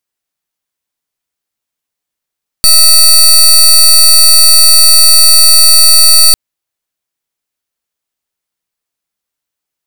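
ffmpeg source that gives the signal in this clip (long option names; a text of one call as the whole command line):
ffmpeg -f lavfi -i "aevalsrc='0.668*(2*lt(mod(4540*t,1),0.22)-1)':duration=3.7:sample_rate=44100" out.wav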